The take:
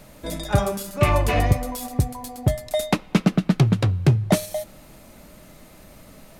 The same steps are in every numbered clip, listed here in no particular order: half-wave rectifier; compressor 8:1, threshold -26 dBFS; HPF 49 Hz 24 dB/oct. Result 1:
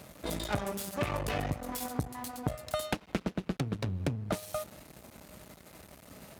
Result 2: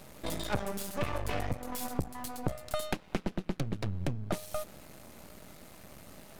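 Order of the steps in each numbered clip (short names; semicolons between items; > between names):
half-wave rectifier > compressor > HPF; compressor > HPF > half-wave rectifier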